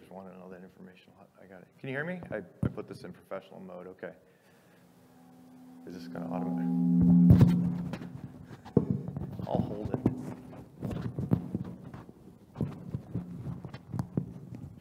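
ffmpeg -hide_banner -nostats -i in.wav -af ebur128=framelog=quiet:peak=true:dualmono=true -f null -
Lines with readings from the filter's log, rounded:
Integrated loudness:
  I:         -27.5 LUFS
  Threshold: -39.9 LUFS
Loudness range:
  LRA:        15.9 LU
  Threshold: -49.1 LUFS
  LRA low:   -39.9 LUFS
  LRA high:  -24.0 LUFS
True peak:
  Peak:       -7.7 dBFS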